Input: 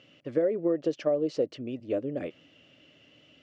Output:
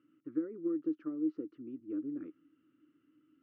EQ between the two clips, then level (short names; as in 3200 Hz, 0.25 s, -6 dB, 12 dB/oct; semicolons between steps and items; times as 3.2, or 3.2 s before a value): double band-pass 640 Hz, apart 2.1 oct; tilt -3 dB/oct; -4.5 dB